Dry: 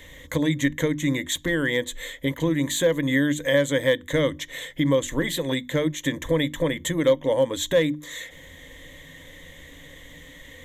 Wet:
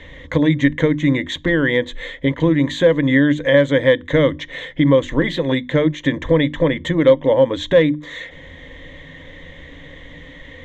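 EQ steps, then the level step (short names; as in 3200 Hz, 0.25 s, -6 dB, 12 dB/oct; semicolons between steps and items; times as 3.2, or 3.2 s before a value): air absorption 220 m; high shelf 11000 Hz -6.5 dB; +8.0 dB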